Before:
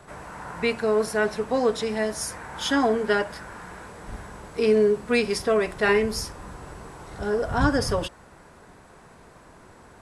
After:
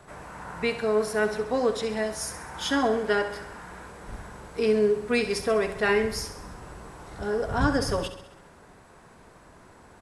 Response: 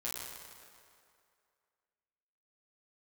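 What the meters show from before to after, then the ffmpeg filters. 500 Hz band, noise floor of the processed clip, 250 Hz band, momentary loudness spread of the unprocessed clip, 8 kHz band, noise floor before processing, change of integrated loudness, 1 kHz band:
-2.0 dB, -52 dBFS, -2.5 dB, 19 LU, -2.0 dB, -51 dBFS, -2.5 dB, -2.0 dB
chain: -af "aecho=1:1:66|132|198|264|330|396|462:0.266|0.154|0.0895|0.0519|0.0301|0.0175|0.0101,volume=-2.5dB"

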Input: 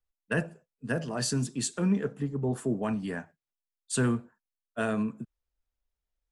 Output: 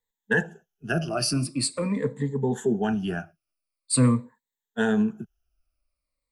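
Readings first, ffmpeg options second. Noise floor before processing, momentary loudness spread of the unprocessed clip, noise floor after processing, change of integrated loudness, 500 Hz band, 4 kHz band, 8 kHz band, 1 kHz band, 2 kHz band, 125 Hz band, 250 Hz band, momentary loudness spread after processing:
under -85 dBFS, 13 LU, under -85 dBFS, +5.0 dB, +5.0 dB, +7.0 dB, +5.0 dB, +5.0 dB, +6.5 dB, +4.5 dB, +4.5 dB, 14 LU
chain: -af "afftfilt=real='re*pow(10,18/40*sin(2*PI*(1*log(max(b,1)*sr/1024/100)/log(2)-(-0.45)*(pts-256)/sr)))':imag='im*pow(10,18/40*sin(2*PI*(1*log(max(b,1)*sr/1024/100)/log(2)-(-0.45)*(pts-256)/sr)))':win_size=1024:overlap=0.75,volume=1.5dB"

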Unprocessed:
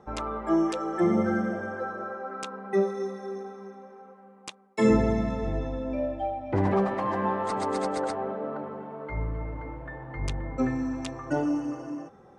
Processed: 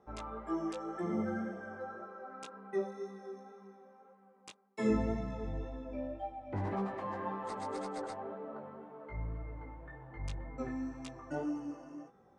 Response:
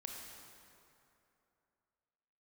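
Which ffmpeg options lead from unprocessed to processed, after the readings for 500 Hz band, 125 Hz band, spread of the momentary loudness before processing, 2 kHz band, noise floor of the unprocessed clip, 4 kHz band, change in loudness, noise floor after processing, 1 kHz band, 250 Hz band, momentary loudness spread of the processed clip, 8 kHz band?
-11.5 dB, -10.0 dB, 14 LU, -11.0 dB, -53 dBFS, -11.0 dB, -10.5 dB, -64 dBFS, -10.5 dB, -10.5 dB, 14 LU, -11.0 dB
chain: -af "flanger=delay=16:depth=3.3:speed=1.9,volume=-8dB"

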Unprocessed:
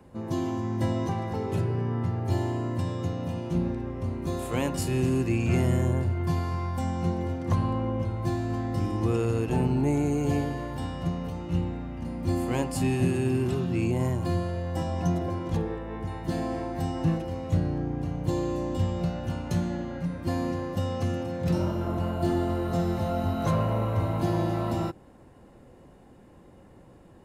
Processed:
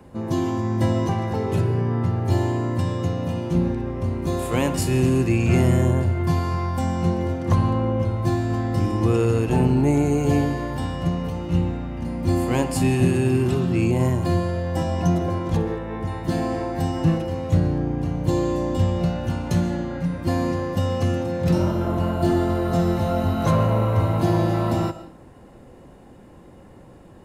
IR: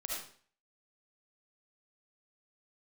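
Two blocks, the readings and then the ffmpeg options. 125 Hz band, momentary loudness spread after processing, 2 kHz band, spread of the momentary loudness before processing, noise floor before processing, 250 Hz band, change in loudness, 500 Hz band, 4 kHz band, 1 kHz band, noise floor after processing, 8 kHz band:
+6.5 dB, 6 LU, +6.5 dB, 7 LU, -52 dBFS, +6.0 dB, +6.0 dB, +6.5 dB, +6.0 dB, +6.0 dB, -46 dBFS, +6.0 dB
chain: -filter_complex "[0:a]asplit=2[a][b];[1:a]atrim=start_sample=2205,adelay=63[c];[b][c]afir=irnorm=-1:irlink=0,volume=-15dB[d];[a][d]amix=inputs=2:normalize=0,volume=6dB"

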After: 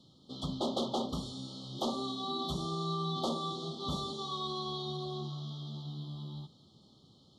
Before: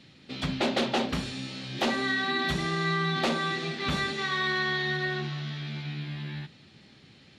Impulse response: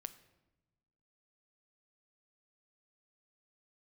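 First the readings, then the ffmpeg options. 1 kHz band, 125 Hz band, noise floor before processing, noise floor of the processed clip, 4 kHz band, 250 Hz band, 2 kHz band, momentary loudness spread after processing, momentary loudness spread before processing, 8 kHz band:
-6.0 dB, -6.0 dB, -56 dBFS, -63 dBFS, -6.5 dB, -6.0 dB, under -40 dB, 9 LU, 10 LU, -6.0 dB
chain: -af "asuperstop=centerf=2000:order=20:qfactor=1.1,volume=-6dB"

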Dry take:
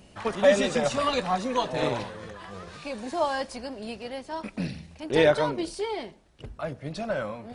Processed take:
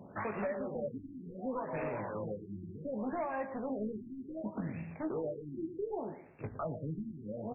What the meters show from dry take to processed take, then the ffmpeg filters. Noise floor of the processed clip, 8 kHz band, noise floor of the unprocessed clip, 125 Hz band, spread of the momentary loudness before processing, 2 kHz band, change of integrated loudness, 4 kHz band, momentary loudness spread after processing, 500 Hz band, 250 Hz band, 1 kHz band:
-51 dBFS, under -40 dB, -53 dBFS, -6.5 dB, 18 LU, -15.0 dB, -12.0 dB, under -40 dB, 8 LU, -12.5 dB, -6.5 dB, -12.0 dB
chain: -filter_complex "[0:a]highpass=f=99:w=0.5412,highpass=f=99:w=1.3066,acompressor=threshold=-35dB:ratio=12,asplit=2[a][b];[b]aecho=0:1:115|230|345:0.251|0.0728|0.0211[c];[a][c]amix=inputs=2:normalize=0,asoftclip=type=hard:threshold=-35dB,asplit=2[d][e];[e]adelay=19,volume=-7dB[f];[d][f]amix=inputs=2:normalize=0,afftfilt=real='re*lt(b*sr/1024,360*pow(2800/360,0.5+0.5*sin(2*PI*0.67*pts/sr)))':imag='im*lt(b*sr/1024,360*pow(2800/360,0.5+0.5*sin(2*PI*0.67*pts/sr)))':win_size=1024:overlap=0.75,volume=2.5dB"

